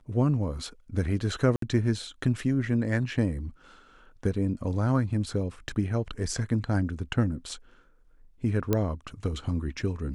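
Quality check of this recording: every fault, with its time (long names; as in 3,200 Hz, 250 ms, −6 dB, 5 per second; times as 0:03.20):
0:01.56–0:01.62: drop-out 63 ms
0:05.69: drop-out 2.8 ms
0:08.73: click −11 dBFS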